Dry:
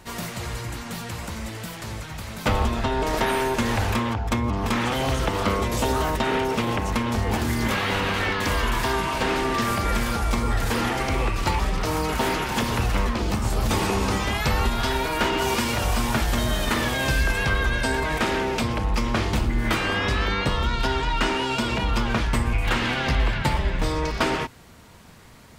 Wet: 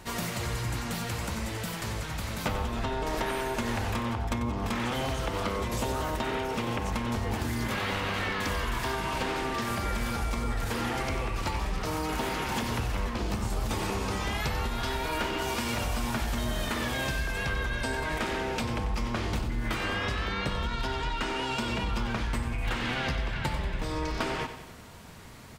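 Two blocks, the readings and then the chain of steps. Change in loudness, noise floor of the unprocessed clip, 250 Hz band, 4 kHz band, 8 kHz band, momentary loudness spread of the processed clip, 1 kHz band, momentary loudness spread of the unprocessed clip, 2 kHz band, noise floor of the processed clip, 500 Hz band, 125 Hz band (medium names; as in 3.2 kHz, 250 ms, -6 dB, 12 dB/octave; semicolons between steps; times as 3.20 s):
-7.0 dB, -37 dBFS, -7.0 dB, -6.5 dB, -6.0 dB, 3 LU, -7.0 dB, 3 LU, -7.0 dB, -36 dBFS, -7.0 dB, -6.5 dB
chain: compression, threshold -28 dBFS, peak gain reduction 10.5 dB; on a send: feedback delay 93 ms, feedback 54%, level -10.5 dB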